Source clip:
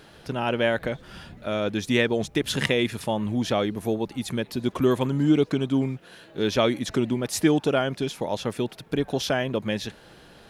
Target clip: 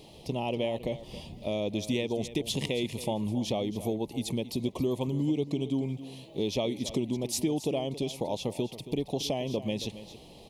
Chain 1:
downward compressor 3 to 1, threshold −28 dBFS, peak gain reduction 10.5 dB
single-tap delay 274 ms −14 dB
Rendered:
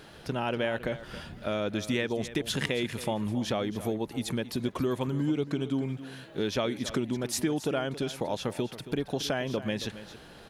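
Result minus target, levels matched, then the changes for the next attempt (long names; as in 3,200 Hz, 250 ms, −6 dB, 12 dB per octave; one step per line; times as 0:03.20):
2,000 Hz band +7.5 dB
add after downward compressor: Butterworth band-reject 1,500 Hz, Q 1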